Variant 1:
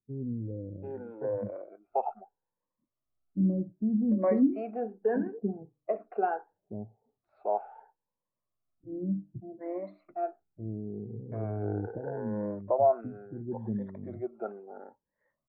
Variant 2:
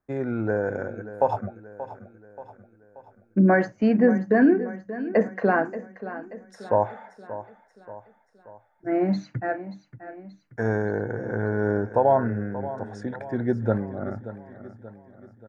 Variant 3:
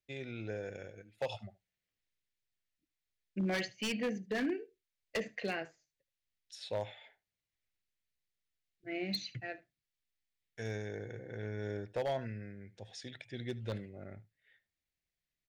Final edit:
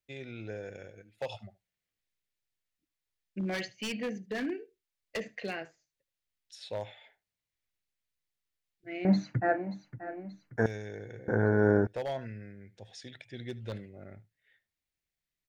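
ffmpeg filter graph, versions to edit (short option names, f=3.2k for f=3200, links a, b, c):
-filter_complex "[1:a]asplit=2[a][b];[2:a]asplit=3[c][d][e];[c]atrim=end=9.052[f];[a]atrim=start=9.048:end=10.662[g];[d]atrim=start=10.658:end=11.282[h];[b]atrim=start=11.278:end=11.872[i];[e]atrim=start=11.868[j];[f][g]acrossfade=d=0.004:c1=hsin:c2=hsin[k];[k][h]acrossfade=d=0.004:c1=hsin:c2=hsin[l];[l][i]acrossfade=d=0.004:c1=hsin:c2=hsin[m];[m][j]acrossfade=d=0.004:c1=hsin:c2=hsin"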